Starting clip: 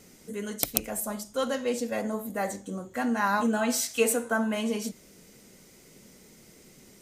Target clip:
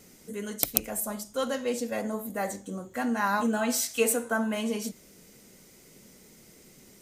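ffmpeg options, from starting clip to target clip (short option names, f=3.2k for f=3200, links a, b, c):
-af "highshelf=f=12k:g=5.5,volume=-1dB"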